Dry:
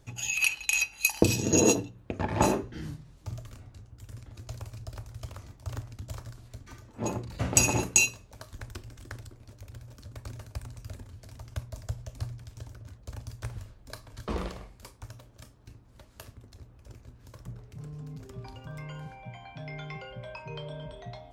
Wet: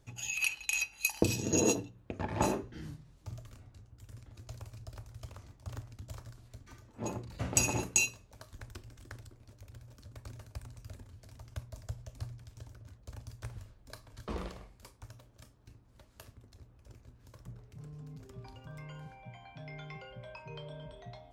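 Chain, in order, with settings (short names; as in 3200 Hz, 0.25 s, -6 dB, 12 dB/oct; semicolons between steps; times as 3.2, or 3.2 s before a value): 5.3–5.72 Doppler distortion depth 0.65 ms; gain -6 dB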